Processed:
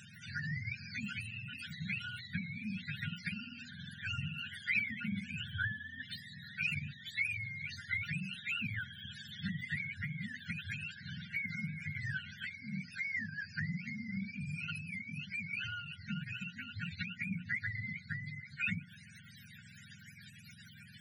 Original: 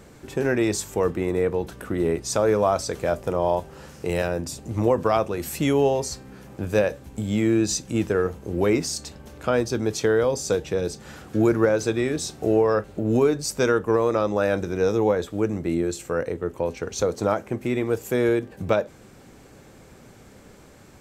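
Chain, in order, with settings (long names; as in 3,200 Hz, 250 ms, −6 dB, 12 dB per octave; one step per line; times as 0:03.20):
frequency axis turned over on the octave scale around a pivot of 490 Hz
high-pass filter 130 Hz 12 dB per octave
mains-hum notches 60/120/180/240 Hz
in parallel at +0.5 dB: brickwall limiter −21.5 dBFS, peak gain reduction 11.5 dB
on the sum: downward compressor 3 to 1, threshold −24 dBFS, peak gain reduction 8.5 dB
linear-phase brick-wall band-stop 240–1,400 Hz
harmonic and percussive parts rebalanced harmonic −7 dB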